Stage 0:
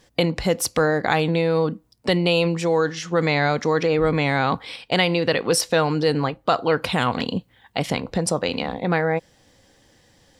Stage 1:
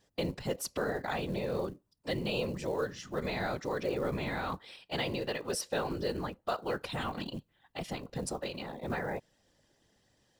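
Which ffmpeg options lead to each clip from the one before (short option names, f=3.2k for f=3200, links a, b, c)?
-af "afftfilt=real='hypot(re,im)*cos(2*PI*random(0))':imag='hypot(re,im)*sin(2*PI*random(1))':win_size=512:overlap=0.75,bandreject=f=2.2k:w=14,acrusher=bits=7:mode=log:mix=0:aa=0.000001,volume=-8dB"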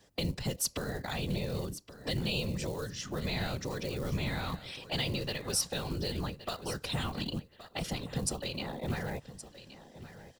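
-filter_complex "[0:a]acrossover=split=170|3000[a][b][c];[b]acompressor=threshold=-44dB:ratio=10[d];[a][d][c]amix=inputs=3:normalize=0,aecho=1:1:1121|2242:0.188|0.0396,volume=7dB"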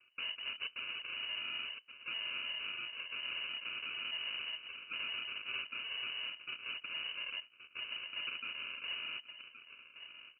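-af "acrusher=samples=40:mix=1:aa=0.000001,asoftclip=type=tanh:threshold=-32.5dB,lowpass=f=2.6k:t=q:w=0.5098,lowpass=f=2.6k:t=q:w=0.6013,lowpass=f=2.6k:t=q:w=0.9,lowpass=f=2.6k:t=q:w=2.563,afreqshift=-3000,volume=-3.5dB"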